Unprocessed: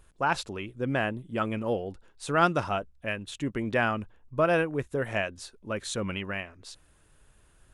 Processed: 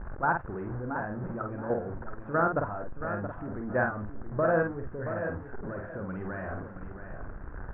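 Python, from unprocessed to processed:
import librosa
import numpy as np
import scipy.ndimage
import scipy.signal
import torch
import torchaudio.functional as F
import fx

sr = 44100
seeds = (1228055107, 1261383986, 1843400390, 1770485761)

y = x + 0.5 * 10.0 ** (-30.0 / 20.0) * np.sign(x)
y = scipy.signal.sosfilt(scipy.signal.ellip(4, 1.0, 60, 1600.0, 'lowpass', fs=sr, output='sos'), y)
y = fx.low_shelf(y, sr, hz=130.0, db=2.0)
y = fx.level_steps(y, sr, step_db=12)
y = fx.doubler(y, sr, ms=48.0, db=-4.5)
y = fx.echo_feedback(y, sr, ms=675, feedback_pct=26, wet_db=-9.5)
y = y * librosa.db_to_amplitude(-1.0)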